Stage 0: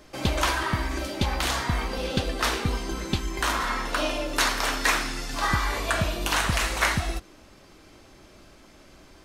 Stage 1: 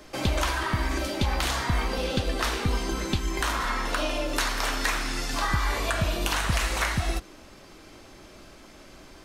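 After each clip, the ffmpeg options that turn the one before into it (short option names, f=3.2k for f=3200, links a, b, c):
-filter_complex "[0:a]equalizer=f=86:w=0.62:g=-2.5,acrossover=split=140[a][b];[b]acompressor=threshold=-30dB:ratio=3[c];[a][c]amix=inputs=2:normalize=0,volume=3.5dB"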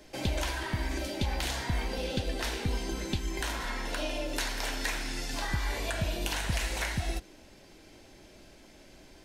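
-af "equalizer=f=1.2k:w=4.2:g=-12.5,volume=-5dB"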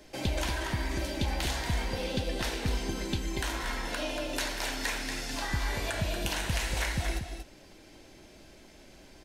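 -af "aecho=1:1:234:0.422"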